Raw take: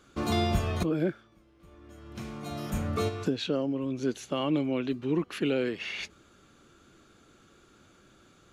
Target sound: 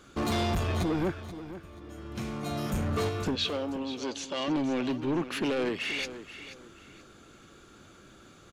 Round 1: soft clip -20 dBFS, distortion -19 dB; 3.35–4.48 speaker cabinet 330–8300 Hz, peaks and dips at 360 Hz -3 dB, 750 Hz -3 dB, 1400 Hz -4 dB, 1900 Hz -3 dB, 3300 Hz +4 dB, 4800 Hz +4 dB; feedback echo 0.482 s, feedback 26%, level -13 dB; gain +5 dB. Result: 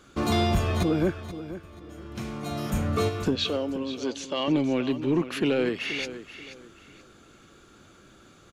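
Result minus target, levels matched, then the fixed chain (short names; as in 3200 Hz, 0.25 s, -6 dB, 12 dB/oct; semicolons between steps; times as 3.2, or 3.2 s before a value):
soft clip: distortion -11 dB
soft clip -30 dBFS, distortion -8 dB; 3.35–4.48 speaker cabinet 330–8300 Hz, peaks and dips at 360 Hz -3 dB, 750 Hz -3 dB, 1400 Hz -4 dB, 1900 Hz -3 dB, 3300 Hz +4 dB, 4800 Hz +4 dB; feedback echo 0.482 s, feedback 26%, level -13 dB; gain +5 dB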